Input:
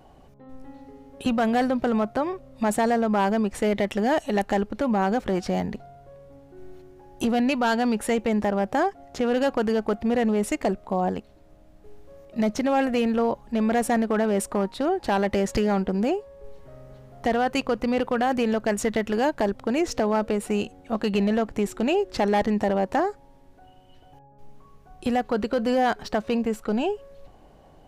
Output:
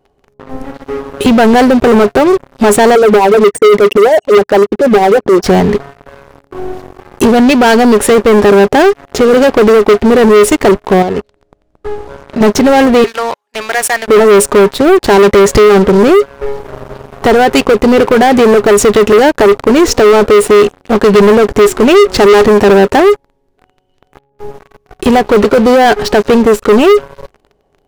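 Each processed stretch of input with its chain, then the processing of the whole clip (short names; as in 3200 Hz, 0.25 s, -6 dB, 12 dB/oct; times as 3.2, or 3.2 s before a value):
2.95–5.44 formant sharpening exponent 3 + HPF 140 Hz + tremolo 10 Hz, depth 60%
11.02–12.41 LPF 9600 Hz + bell 65 Hz +8.5 dB 0.24 oct + compressor 12:1, threshold -31 dBFS
13.04–14.08 HPF 1300 Hz + mismatched tape noise reduction decoder only
whole clip: bell 410 Hz +14.5 dB 0.22 oct; sample leveller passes 5; gain +2 dB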